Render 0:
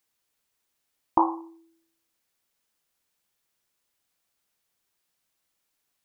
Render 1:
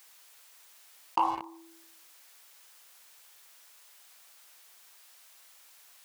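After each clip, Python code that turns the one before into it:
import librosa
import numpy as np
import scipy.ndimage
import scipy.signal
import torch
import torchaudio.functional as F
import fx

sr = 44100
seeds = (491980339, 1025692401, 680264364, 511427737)

y = scipy.signal.sosfilt(scipy.signal.butter(2, 680.0, 'highpass', fs=sr, output='sos'), x)
y = fx.leveller(y, sr, passes=2)
y = fx.env_flatten(y, sr, amount_pct=50)
y = y * librosa.db_to_amplitude(-9.0)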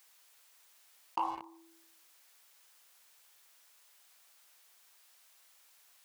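y = fx.peak_eq(x, sr, hz=110.0, db=-7.0, octaves=0.34)
y = y * librosa.db_to_amplitude(-7.0)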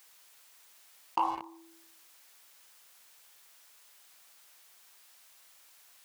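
y = fx.dmg_crackle(x, sr, seeds[0], per_s=410.0, level_db=-67.0)
y = y * librosa.db_to_amplitude(4.5)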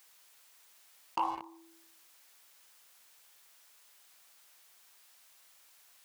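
y = np.clip(x, -10.0 ** (-21.5 / 20.0), 10.0 ** (-21.5 / 20.0))
y = y * librosa.db_to_amplitude(-2.5)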